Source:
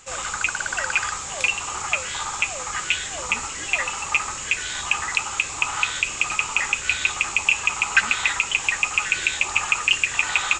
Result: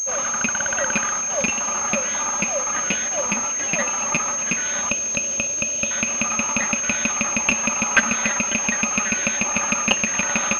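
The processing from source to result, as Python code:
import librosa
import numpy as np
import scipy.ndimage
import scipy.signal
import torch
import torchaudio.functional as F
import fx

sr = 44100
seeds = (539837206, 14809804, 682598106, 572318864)

p1 = fx.level_steps(x, sr, step_db=16)
p2 = x + (p1 * librosa.db_to_amplitude(1.0))
p3 = fx.brickwall_bandstop(p2, sr, low_hz=680.0, high_hz=2400.0, at=(4.89, 5.91))
p4 = fx.cheby_harmonics(p3, sr, harmonics=(8,), levels_db=(-16,), full_scale_db=2.5)
p5 = fx.highpass(p4, sr, hz=90.0, slope=6)
p6 = fx.low_shelf(p5, sr, hz=240.0, db=-8.5)
p7 = fx.small_body(p6, sr, hz=(220.0, 570.0), ring_ms=65, db=15)
p8 = p7 + fx.echo_thinned(p7, sr, ms=273, feedback_pct=79, hz=420.0, wet_db=-17, dry=0)
p9 = fx.pwm(p8, sr, carrier_hz=6400.0)
y = p9 * librosa.db_to_amplitude(-3.5)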